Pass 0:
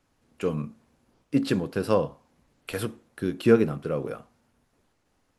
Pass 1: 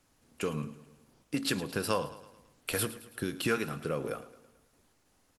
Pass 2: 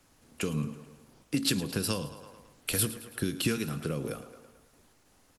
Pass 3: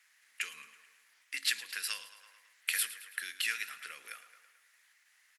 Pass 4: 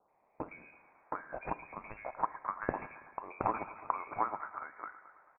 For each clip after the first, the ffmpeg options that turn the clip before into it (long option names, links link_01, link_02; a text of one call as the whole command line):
ffmpeg -i in.wav -filter_complex "[0:a]acrossover=split=940[link_01][link_02];[link_01]acompressor=threshold=-30dB:ratio=6[link_03];[link_03][link_02]amix=inputs=2:normalize=0,aemphasis=mode=production:type=cd,aecho=1:1:109|218|327|436|545:0.158|0.0824|0.0429|0.0223|0.0116" out.wav
ffmpeg -i in.wav -filter_complex "[0:a]acrossover=split=310|3000[link_01][link_02][link_03];[link_02]acompressor=threshold=-44dB:ratio=6[link_04];[link_01][link_04][link_03]amix=inputs=3:normalize=0,volume=5.5dB" out.wav
ffmpeg -i in.wav -af "highpass=frequency=1900:width_type=q:width=4.6,volume=-4dB" out.wav
ffmpeg -i in.wav -filter_complex "[0:a]acrossover=split=650|2100[link_01][link_02][link_03];[link_01]adelay=80[link_04];[link_02]adelay=720[link_05];[link_04][link_05][link_03]amix=inputs=3:normalize=0,adynamicsmooth=sensitivity=1:basefreq=1500,lowpass=frequency=2300:width_type=q:width=0.5098,lowpass=frequency=2300:width_type=q:width=0.6013,lowpass=frequency=2300:width_type=q:width=0.9,lowpass=frequency=2300:width_type=q:width=2.563,afreqshift=-2700,volume=14dB" out.wav